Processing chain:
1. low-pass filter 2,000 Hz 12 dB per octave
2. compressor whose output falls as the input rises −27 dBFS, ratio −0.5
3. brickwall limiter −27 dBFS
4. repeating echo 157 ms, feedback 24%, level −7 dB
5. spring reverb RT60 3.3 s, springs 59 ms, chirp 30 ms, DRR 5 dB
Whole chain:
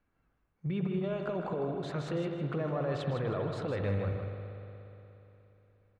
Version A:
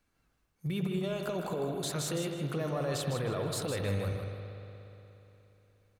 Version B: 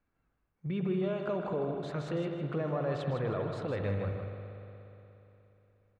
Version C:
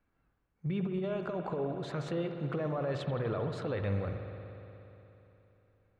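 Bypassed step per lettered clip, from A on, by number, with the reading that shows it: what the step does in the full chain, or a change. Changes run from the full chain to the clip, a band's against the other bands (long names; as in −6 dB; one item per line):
1, 4 kHz band +9.5 dB
2, 4 kHz band −1.5 dB
4, echo-to-direct ratio −2.5 dB to −5.0 dB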